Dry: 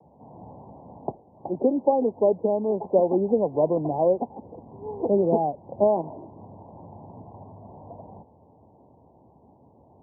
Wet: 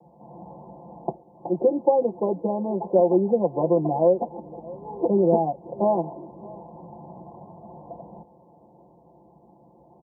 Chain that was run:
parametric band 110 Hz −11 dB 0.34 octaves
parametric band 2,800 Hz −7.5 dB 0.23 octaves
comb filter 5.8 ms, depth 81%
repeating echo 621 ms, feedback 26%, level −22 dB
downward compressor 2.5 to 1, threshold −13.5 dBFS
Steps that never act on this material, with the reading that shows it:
parametric band 2,800 Hz: nothing at its input above 1,100 Hz

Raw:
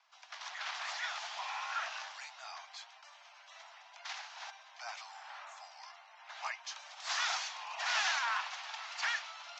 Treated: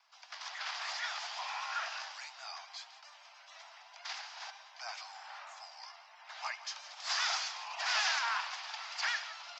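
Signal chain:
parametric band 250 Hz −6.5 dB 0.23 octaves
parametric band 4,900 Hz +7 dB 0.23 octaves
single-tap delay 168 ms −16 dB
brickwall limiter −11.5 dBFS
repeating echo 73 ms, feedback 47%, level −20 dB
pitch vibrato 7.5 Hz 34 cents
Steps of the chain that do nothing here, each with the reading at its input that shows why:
parametric band 250 Hz: nothing at its input below 510 Hz
brickwall limiter −11.5 dBFS: peak of its input −18.5 dBFS

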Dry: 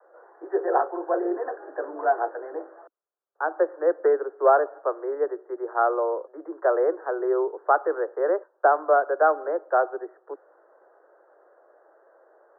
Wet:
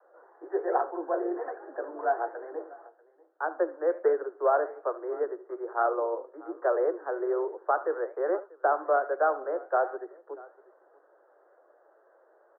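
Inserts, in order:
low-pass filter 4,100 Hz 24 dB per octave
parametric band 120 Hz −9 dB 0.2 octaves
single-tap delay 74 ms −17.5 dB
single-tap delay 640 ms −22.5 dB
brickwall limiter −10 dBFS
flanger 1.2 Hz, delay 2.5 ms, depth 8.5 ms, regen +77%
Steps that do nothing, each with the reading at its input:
low-pass filter 4,100 Hz: nothing at its input above 1,800 Hz
parametric band 120 Hz: nothing at its input below 270 Hz

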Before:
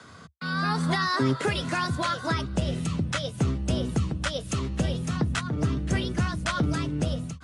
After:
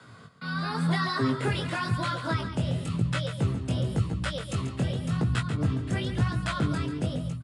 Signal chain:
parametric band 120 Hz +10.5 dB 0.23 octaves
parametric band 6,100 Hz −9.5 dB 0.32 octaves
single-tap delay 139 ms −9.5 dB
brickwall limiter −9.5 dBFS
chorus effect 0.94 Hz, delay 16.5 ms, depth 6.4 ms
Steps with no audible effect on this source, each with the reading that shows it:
brickwall limiter −9.5 dBFS: peak of its input −11.0 dBFS

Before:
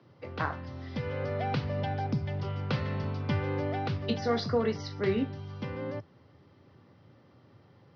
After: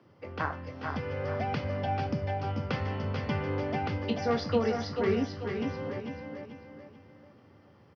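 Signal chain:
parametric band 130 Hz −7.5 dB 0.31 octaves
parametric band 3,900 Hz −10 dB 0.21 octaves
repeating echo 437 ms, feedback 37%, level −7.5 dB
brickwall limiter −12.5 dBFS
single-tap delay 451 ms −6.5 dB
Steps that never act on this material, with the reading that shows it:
brickwall limiter −12.5 dBFS: peak of its input −16.5 dBFS

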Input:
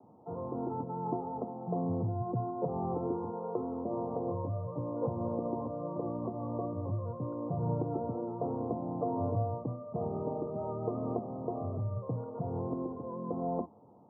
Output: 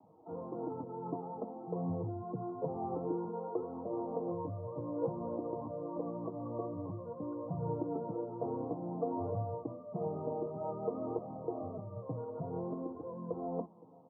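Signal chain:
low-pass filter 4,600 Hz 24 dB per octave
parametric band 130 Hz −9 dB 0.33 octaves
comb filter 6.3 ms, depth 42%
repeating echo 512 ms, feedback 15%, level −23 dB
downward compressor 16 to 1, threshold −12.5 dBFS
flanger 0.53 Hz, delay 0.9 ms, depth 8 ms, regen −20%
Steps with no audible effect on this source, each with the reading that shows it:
low-pass filter 4,600 Hz: nothing at its input above 1,200 Hz
downward compressor, threshold −12.5 dBFS: peak of its input −19.5 dBFS

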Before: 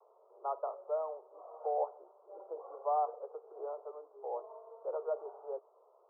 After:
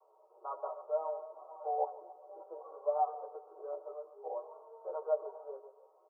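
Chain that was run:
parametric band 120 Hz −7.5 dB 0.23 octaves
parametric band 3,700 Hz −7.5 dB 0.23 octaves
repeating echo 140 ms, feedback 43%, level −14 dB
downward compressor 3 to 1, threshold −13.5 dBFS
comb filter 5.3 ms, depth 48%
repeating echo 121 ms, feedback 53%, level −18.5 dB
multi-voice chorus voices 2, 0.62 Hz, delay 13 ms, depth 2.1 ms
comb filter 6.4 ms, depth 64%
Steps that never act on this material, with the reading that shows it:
parametric band 120 Hz: nothing at its input below 340 Hz
parametric band 3,700 Hz: nothing at its input above 1,400 Hz
downward compressor, threshold −13.5 dBFS: peak of its input −23.0 dBFS

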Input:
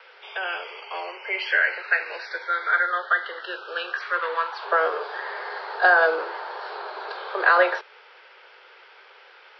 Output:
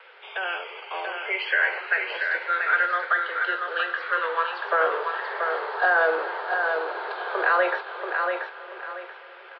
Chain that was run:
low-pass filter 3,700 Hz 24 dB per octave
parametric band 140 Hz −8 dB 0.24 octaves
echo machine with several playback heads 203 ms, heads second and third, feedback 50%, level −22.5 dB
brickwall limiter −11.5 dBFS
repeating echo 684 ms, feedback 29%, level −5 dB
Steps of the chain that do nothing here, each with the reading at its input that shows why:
parametric band 140 Hz: nothing at its input below 300 Hz

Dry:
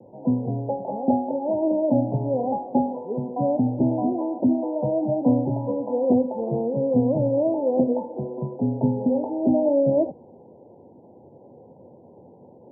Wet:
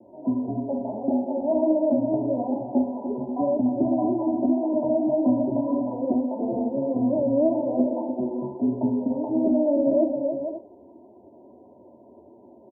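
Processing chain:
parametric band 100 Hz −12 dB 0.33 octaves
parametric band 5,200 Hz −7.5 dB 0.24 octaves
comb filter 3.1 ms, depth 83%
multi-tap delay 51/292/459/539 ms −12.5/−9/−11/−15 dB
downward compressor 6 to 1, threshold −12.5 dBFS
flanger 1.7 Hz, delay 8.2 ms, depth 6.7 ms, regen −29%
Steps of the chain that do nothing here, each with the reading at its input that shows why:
parametric band 5,200 Hz: nothing at its input above 1,000 Hz

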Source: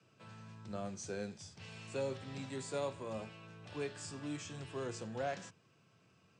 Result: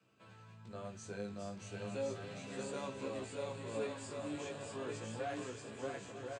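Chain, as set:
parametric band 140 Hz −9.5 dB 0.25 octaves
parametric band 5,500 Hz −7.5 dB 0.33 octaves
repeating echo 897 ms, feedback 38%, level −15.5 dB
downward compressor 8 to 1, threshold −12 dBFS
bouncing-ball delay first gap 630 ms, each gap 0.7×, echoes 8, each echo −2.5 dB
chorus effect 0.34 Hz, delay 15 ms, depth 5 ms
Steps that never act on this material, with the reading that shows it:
downward compressor, threshold −12 dBFS: peak of its input −27.0 dBFS

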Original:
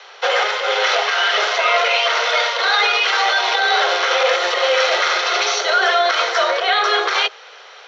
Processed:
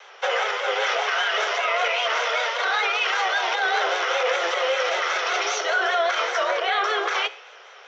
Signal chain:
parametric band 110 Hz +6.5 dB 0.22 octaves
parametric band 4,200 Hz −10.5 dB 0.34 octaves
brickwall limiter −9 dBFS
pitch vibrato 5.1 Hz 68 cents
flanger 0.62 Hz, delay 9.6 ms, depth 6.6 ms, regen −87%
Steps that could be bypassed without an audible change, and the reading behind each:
parametric band 110 Hz: nothing at its input below 340 Hz

